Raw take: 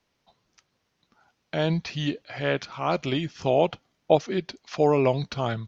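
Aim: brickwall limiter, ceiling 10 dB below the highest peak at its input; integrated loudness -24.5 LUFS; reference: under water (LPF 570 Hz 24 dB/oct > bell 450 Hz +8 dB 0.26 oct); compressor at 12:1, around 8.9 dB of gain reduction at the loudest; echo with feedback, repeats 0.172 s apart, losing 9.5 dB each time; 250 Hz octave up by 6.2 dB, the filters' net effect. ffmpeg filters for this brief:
-af "equalizer=f=250:t=o:g=8,acompressor=threshold=-19dB:ratio=12,alimiter=limit=-18.5dB:level=0:latency=1,lowpass=f=570:w=0.5412,lowpass=f=570:w=1.3066,equalizer=f=450:t=o:w=0.26:g=8,aecho=1:1:172|344|516|688:0.335|0.111|0.0365|0.012,volume=5dB"

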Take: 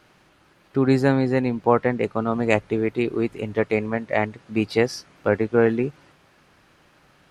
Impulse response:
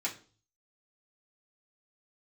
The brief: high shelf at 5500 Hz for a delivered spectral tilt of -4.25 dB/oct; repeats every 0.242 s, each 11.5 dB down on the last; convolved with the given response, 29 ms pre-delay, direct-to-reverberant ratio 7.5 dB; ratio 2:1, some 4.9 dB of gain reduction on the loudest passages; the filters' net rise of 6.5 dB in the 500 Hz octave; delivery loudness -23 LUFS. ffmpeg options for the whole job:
-filter_complex "[0:a]equalizer=f=500:t=o:g=7.5,highshelf=f=5.5k:g=7.5,acompressor=threshold=-16dB:ratio=2,aecho=1:1:242|484|726:0.266|0.0718|0.0194,asplit=2[a][b];[1:a]atrim=start_sample=2205,adelay=29[c];[b][c]afir=irnorm=-1:irlink=0,volume=-11.5dB[d];[a][d]amix=inputs=2:normalize=0,volume=-2.5dB"

